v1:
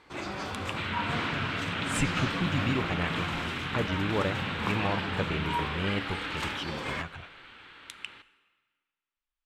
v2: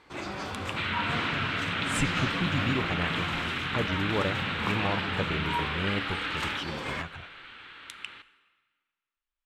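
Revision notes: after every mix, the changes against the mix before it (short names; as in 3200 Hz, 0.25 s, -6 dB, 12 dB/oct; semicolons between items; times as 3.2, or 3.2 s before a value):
second sound +4.0 dB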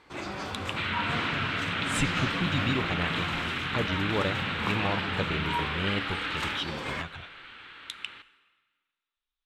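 speech: add bell 3700 Hz +11.5 dB 0.37 oct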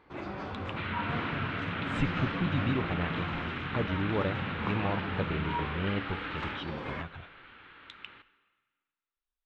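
master: add tape spacing loss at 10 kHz 31 dB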